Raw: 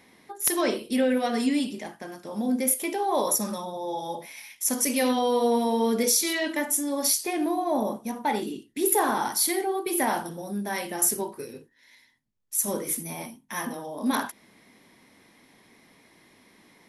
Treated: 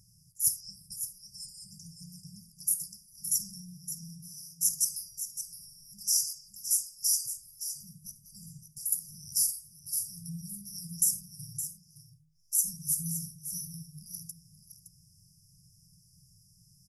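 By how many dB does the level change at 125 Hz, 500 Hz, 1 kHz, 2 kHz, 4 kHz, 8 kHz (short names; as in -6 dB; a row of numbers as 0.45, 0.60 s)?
-1.5 dB, under -40 dB, under -40 dB, under -40 dB, -6.0 dB, -1.5 dB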